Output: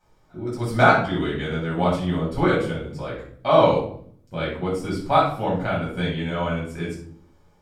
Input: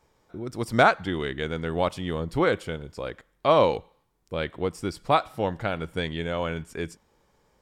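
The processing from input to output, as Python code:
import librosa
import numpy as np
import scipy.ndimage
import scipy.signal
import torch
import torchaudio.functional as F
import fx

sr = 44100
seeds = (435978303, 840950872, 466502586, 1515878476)

y = fx.room_shoebox(x, sr, seeds[0], volume_m3=660.0, walls='furnished', distance_m=7.9)
y = y * 10.0 ** (-7.5 / 20.0)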